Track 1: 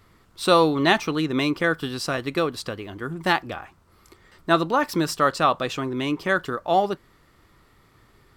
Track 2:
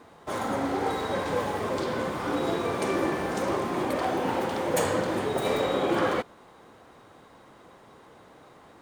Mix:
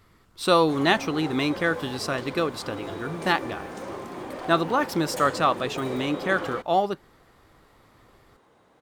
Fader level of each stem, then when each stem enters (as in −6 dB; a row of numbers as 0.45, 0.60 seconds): −2.0, −8.0 decibels; 0.00, 0.40 seconds